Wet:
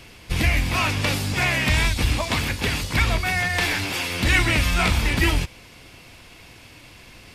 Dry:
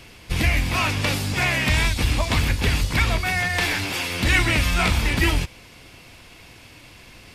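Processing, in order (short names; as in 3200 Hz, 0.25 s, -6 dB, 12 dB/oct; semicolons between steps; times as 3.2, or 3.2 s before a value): 2.17–2.94 HPF 140 Hz 6 dB/oct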